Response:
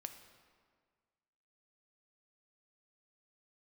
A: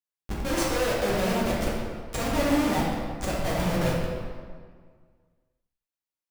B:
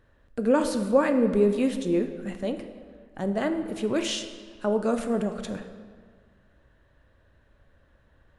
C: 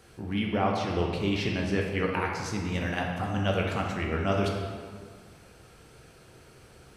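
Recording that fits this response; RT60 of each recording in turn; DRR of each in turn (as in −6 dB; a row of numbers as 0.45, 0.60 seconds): B; 1.8, 1.7, 1.8 seconds; −6.0, 7.0, −1.0 decibels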